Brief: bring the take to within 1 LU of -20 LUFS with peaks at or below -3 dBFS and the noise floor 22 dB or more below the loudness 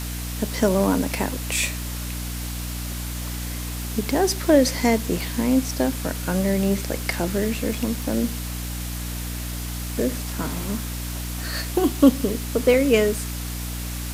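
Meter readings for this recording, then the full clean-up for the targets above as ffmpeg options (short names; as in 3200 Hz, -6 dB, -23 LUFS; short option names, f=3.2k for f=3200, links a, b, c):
hum 60 Hz; harmonics up to 300 Hz; hum level -28 dBFS; noise floor -30 dBFS; noise floor target -46 dBFS; loudness -24.0 LUFS; peak -3.5 dBFS; loudness target -20.0 LUFS
-> -af "bandreject=f=60:t=h:w=4,bandreject=f=120:t=h:w=4,bandreject=f=180:t=h:w=4,bandreject=f=240:t=h:w=4,bandreject=f=300:t=h:w=4"
-af "afftdn=nr=16:nf=-30"
-af "volume=4dB,alimiter=limit=-3dB:level=0:latency=1"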